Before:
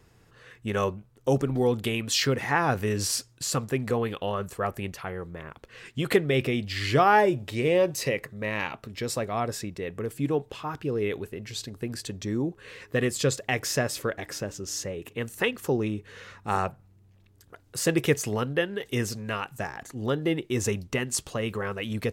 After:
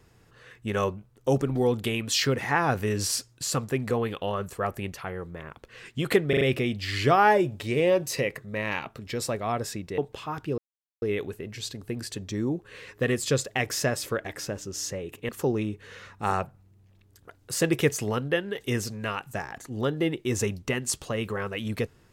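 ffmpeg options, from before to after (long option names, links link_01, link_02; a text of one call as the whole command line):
ffmpeg -i in.wav -filter_complex "[0:a]asplit=7[link_01][link_02][link_03][link_04][link_05][link_06][link_07];[link_01]atrim=end=6.332[link_08];[link_02]atrim=start=6.288:end=6.332[link_09];[link_03]atrim=start=6.288:end=6.332[link_10];[link_04]atrim=start=6.288:end=9.862[link_11];[link_05]atrim=start=10.348:end=10.95,asetpts=PTS-STARTPTS,afade=type=out:start_time=0.598:duration=0.004:curve=hsin,apad=pad_dur=0.44[link_12];[link_06]atrim=start=10.95:end=15.222,asetpts=PTS-STARTPTS,afade=type=in:duration=0.004:curve=hsin[link_13];[link_07]atrim=start=15.538[link_14];[link_08][link_09]acrossfade=duration=0.004:curve1=hsin:curve2=hsin[link_15];[link_15][link_10]acrossfade=duration=0.004:curve1=hsin:curve2=hsin[link_16];[link_16][link_11]acrossfade=duration=0.004:curve1=hsin:curve2=hsin[link_17];[link_12][link_13]concat=n=2:v=0:a=1[link_18];[link_17][link_18]acrossfade=duration=0.004:curve1=hsin:curve2=hsin[link_19];[link_19][link_14]acrossfade=duration=0.004:curve1=hsin:curve2=hsin" out.wav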